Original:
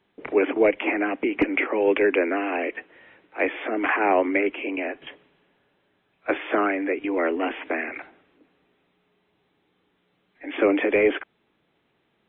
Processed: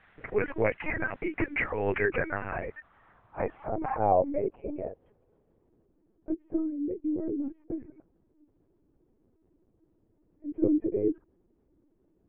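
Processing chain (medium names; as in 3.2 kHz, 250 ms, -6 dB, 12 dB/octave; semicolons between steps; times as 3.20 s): 4.89–7.21 s: companding laws mixed up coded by A; reverb removal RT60 0.66 s; word length cut 8-bit, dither triangular; low-pass sweep 1.8 kHz -> 320 Hz, 2.08–6.00 s; LPC vocoder at 8 kHz pitch kept; trim -8 dB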